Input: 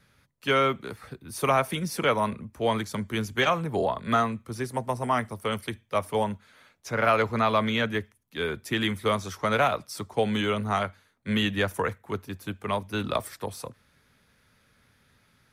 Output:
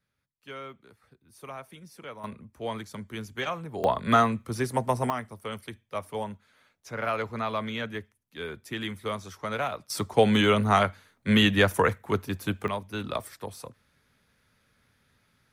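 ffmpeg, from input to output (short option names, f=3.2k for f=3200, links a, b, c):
-af "asetnsamples=n=441:p=0,asendcmd='2.24 volume volume -8dB;3.84 volume volume 3dB;5.1 volume volume -7dB;9.9 volume volume 5dB;12.68 volume volume -4dB',volume=-18dB"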